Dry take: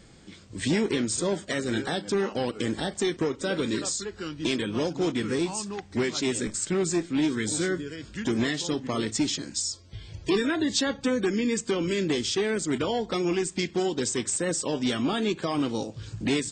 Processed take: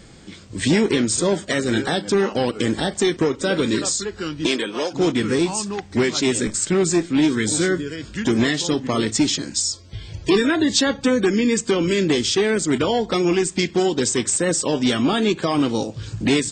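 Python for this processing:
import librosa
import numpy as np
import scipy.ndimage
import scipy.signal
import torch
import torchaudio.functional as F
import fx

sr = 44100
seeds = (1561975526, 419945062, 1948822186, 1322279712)

y = fx.highpass(x, sr, hz=fx.line((4.46, 250.0), (4.92, 570.0)), slope=12, at=(4.46, 4.92), fade=0.02)
y = F.gain(torch.from_numpy(y), 7.5).numpy()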